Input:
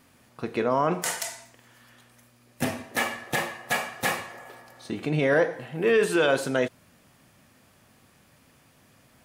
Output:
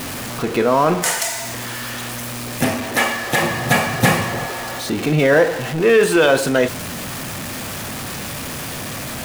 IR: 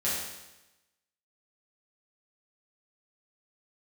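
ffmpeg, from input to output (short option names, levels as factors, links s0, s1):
-filter_complex "[0:a]aeval=exprs='val(0)+0.5*0.0335*sgn(val(0))':c=same,asettb=1/sr,asplit=3[s0][s1][s2];[s0]atrim=end=3.424[s3];[s1]atrim=start=3.42:end=4.46,asetpts=PTS-STARTPTS,afade=t=in:d=0.004:c=qsin,afade=t=out:st=1.036:d=0.004:c=qsin,equalizer=f=130:w=0.6:g=14.5[s4];[s2]atrim=start=4.456[s5];[s3][s4]acrossfade=d=0.004:c1=hsin:c2=qsin[s6];[s6][s5]acrossfade=d=0.004:c1=qsin:c2=hsin,volume=2.24"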